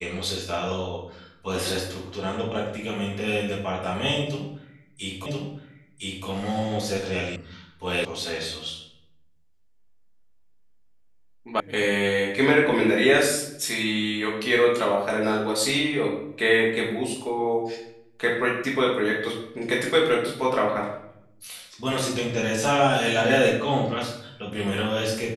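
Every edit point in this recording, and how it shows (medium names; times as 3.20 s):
5.26 s: repeat of the last 1.01 s
7.36 s: sound stops dead
8.05 s: sound stops dead
11.60 s: sound stops dead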